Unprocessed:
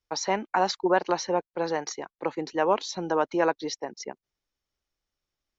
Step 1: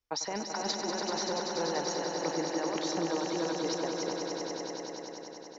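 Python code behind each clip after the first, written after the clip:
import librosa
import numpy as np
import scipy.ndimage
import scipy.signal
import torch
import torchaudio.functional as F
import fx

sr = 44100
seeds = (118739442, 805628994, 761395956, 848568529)

y = fx.over_compress(x, sr, threshold_db=-28.0, ratio=-1.0)
y = fx.echo_swell(y, sr, ms=96, loudest=5, wet_db=-7.0)
y = y * librosa.db_to_amplitude(-6.5)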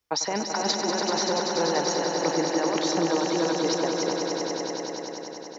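y = scipy.signal.sosfilt(scipy.signal.butter(2, 75.0, 'highpass', fs=sr, output='sos'), x)
y = y * librosa.db_to_amplitude(7.5)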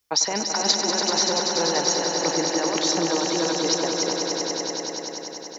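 y = fx.high_shelf(x, sr, hz=3300.0, db=10.0)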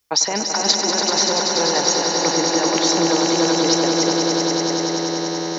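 y = fx.echo_swell(x, sr, ms=108, loudest=8, wet_db=-18)
y = y * librosa.db_to_amplitude(3.5)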